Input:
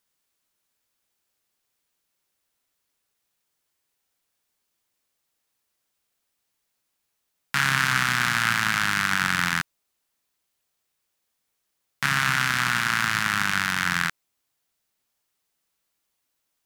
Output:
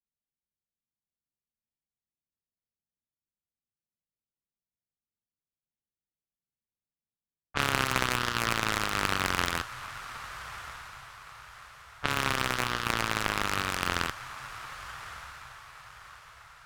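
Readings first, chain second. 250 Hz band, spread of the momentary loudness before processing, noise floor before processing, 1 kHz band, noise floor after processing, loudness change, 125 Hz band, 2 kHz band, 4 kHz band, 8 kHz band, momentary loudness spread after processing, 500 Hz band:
-3.0 dB, 6 LU, -78 dBFS, -4.0 dB, under -85 dBFS, -7.5 dB, -4.0 dB, -9.0 dB, -4.5 dB, -5.5 dB, 20 LU, +8.5 dB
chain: low-pass opened by the level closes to 440 Hz, open at -20 dBFS; frequency shift -240 Hz; on a send: diffused feedback echo 1.206 s, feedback 43%, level -7.5 dB; on the sum: added harmonics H 3 -13 dB, 4 -11 dB, 6 -21 dB, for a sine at -6 dBFS; gain -1.5 dB

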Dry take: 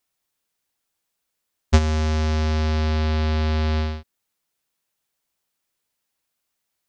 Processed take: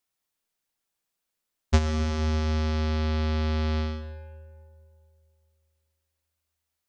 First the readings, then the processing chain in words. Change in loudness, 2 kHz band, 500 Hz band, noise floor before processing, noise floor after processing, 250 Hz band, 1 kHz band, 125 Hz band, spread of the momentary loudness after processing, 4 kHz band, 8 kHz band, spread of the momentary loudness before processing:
-5.0 dB, -5.5 dB, -4.5 dB, -79 dBFS, -83 dBFS, -3.5 dB, -5.0 dB, -5.0 dB, 13 LU, -5.0 dB, n/a, 5 LU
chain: digital reverb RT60 2.5 s, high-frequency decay 0.3×, pre-delay 90 ms, DRR 9 dB; gain -5 dB

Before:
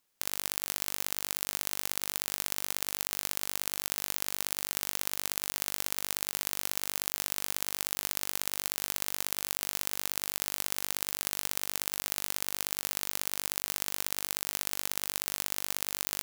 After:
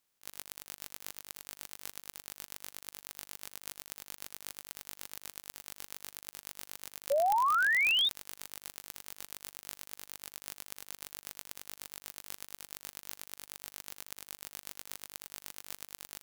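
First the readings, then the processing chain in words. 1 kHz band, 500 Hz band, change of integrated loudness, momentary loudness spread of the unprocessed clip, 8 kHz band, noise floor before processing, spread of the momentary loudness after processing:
+6.5 dB, +5.0 dB, -5.0 dB, 0 LU, -12.5 dB, -38 dBFS, 18 LU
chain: bin magnitudes rounded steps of 30 dB; in parallel at -3 dB: limiter -13.5 dBFS, peak gain reduction 11 dB; on the sum: auto swell 0.132 s; painted sound rise, 7.1–8.09, 540–3800 Hz -20 dBFS; gain -7 dB

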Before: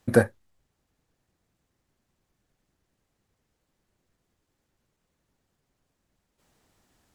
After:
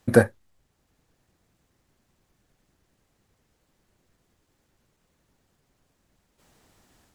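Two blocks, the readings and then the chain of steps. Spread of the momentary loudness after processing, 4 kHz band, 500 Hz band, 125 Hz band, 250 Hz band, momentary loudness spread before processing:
8 LU, +2.5 dB, +2.5 dB, +2.5 dB, +2.5 dB, 8 LU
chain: AGC gain up to 4 dB; gain +2.5 dB

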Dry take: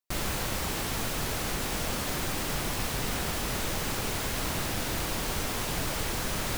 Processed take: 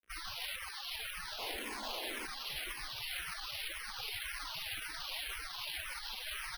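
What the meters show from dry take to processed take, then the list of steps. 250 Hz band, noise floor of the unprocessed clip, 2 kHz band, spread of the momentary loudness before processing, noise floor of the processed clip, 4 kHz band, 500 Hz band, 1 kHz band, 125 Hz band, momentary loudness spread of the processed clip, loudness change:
-21.0 dB, -33 dBFS, -6.5 dB, 0 LU, -46 dBFS, -5.0 dB, -16.0 dB, -11.5 dB, -26.0 dB, 2 LU, -9.5 dB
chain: pre-emphasis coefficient 0.97; spectral gate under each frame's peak -15 dB strong; low shelf 410 Hz +8 dB; limiter -29.5 dBFS, peak gain reduction 7.5 dB; crackle 100/s -60 dBFS; painted sound noise, 1.38–2.26, 210–1100 Hz -58 dBFS; echo 0.734 s -14.5 dB; careless resampling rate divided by 6×, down filtered, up hold; endless phaser -1.9 Hz; gain +15 dB

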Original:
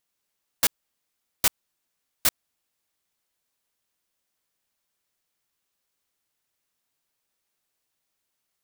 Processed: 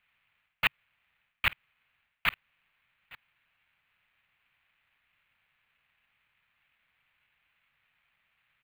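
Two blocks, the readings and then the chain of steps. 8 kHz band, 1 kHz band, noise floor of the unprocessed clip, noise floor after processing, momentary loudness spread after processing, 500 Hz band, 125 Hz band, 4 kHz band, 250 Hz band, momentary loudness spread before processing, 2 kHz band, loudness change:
-29.5 dB, 0.0 dB, -80 dBFS, -78 dBFS, 1 LU, -9.0 dB, +1.0 dB, -4.0 dB, -7.5 dB, 0 LU, +5.0 dB, -6.0 dB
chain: high shelf 8200 Hz +12 dB; reverse; compressor 6:1, threshold -21 dBFS, peak gain reduction 13 dB; reverse; echo 0.86 s -22.5 dB; careless resampling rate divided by 8×, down none, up hold; EQ curve 140 Hz 0 dB, 360 Hz -14 dB, 2500 Hz +11 dB, 7200 Hz -18 dB, 13000 Hz -2 dB; gain -8 dB

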